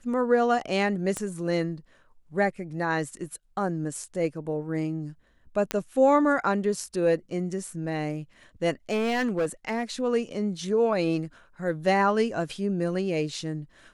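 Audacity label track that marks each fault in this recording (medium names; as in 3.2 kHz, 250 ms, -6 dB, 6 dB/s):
1.170000	1.170000	pop -17 dBFS
5.710000	5.710000	pop -10 dBFS
8.900000	9.830000	clipped -21.5 dBFS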